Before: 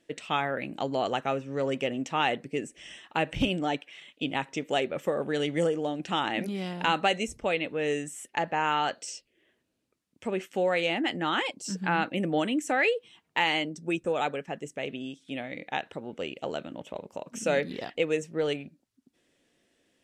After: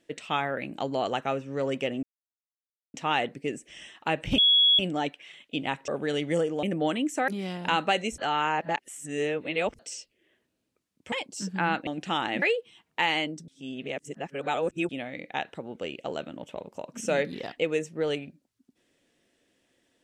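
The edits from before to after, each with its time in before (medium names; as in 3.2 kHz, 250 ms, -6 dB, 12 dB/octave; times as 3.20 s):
2.03 s: insert silence 0.91 s
3.47 s: add tone 3.35 kHz -16.5 dBFS 0.41 s
4.56–5.14 s: delete
5.89–6.44 s: swap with 12.15–12.80 s
7.34–8.95 s: reverse
10.28–11.40 s: delete
13.86–15.27 s: reverse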